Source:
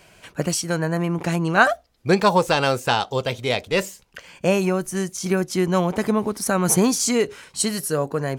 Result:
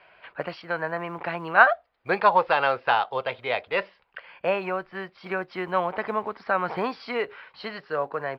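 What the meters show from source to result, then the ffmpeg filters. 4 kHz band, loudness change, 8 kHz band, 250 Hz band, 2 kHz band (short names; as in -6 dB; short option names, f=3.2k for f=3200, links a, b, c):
-9.5 dB, -4.0 dB, under -40 dB, -14.5 dB, 0.0 dB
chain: -filter_complex "[0:a]aresample=11025,aresample=44100,acrusher=bits=8:mode=log:mix=0:aa=0.000001,acrossover=split=560 2600:gain=0.112 1 0.0708[a][b][c];[a][b][c]amix=inputs=3:normalize=0,volume=1.5dB"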